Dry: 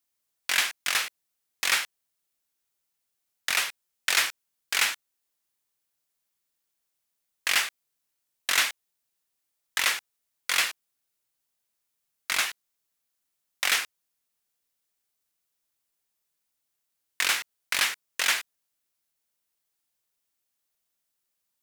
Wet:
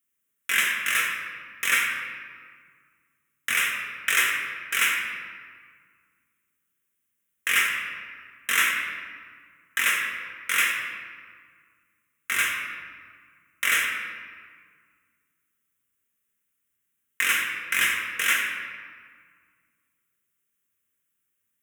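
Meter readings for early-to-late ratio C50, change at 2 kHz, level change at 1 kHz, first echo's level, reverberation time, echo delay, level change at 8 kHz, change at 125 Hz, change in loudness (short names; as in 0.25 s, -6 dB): 3.0 dB, +5.0 dB, +2.5 dB, none, 1.8 s, none, 0.0 dB, n/a, +2.0 dB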